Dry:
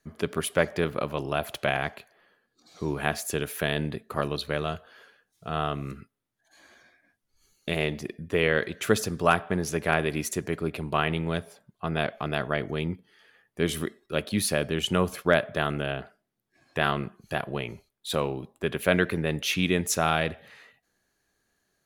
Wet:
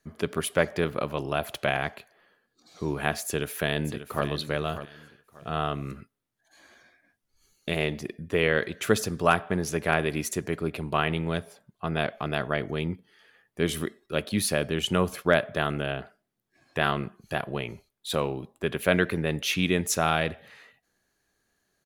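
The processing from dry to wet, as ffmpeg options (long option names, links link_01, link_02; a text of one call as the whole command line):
ffmpeg -i in.wav -filter_complex "[0:a]asplit=2[link_01][link_02];[link_02]afade=type=in:start_time=3.25:duration=0.01,afade=type=out:start_time=4.26:duration=0.01,aecho=0:1:590|1180|1770:0.266073|0.0665181|0.0166295[link_03];[link_01][link_03]amix=inputs=2:normalize=0" out.wav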